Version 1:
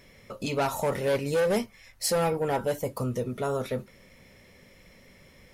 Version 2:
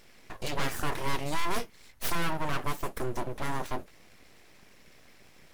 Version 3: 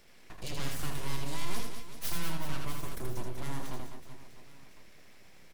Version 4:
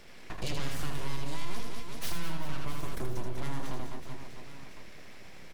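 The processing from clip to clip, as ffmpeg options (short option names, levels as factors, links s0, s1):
-af "aeval=exprs='abs(val(0))':c=same"
-filter_complex "[0:a]acrossover=split=270|3000[s0][s1][s2];[s1]acompressor=threshold=0.00141:ratio=1.5[s3];[s0][s3][s2]amix=inputs=3:normalize=0,asplit=2[s4][s5];[s5]aecho=0:1:80|200|380|650|1055:0.631|0.398|0.251|0.158|0.1[s6];[s4][s6]amix=inputs=2:normalize=0,volume=0.668"
-filter_complex "[0:a]asplit=2[s0][s1];[s1]asoftclip=type=hard:threshold=0.0398,volume=0.355[s2];[s0][s2]amix=inputs=2:normalize=0,highshelf=f=7800:g=-9,acompressor=threshold=0.0224:ratio=2,volume=1.88"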